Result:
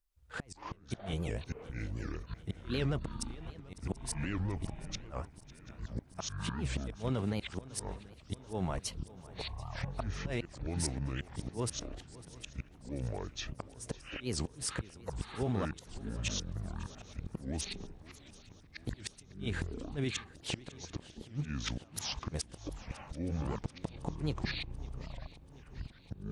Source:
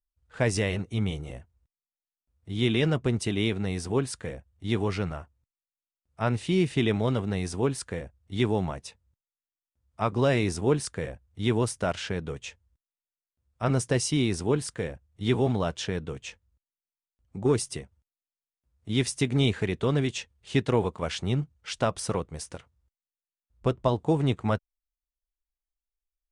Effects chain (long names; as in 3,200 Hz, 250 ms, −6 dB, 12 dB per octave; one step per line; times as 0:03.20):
brickwall limiter −21 dBFS, peak gain reduction 9.5 dB
downward compressor 6 to 1, threshold −34 dBFS, peak gain reduction 9.5 dB
gate with flip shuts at −28 dBFS, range −32 dB
delay with pitch and tempo change per echo 118 ms, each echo −7 semitones, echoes 3
feedback echo with a long and a short gap by turns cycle 736 ms, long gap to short 3 to 1, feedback 62%, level −19 dB
wow of a warped record 78 rpm, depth 250 cents
level +4.5 dB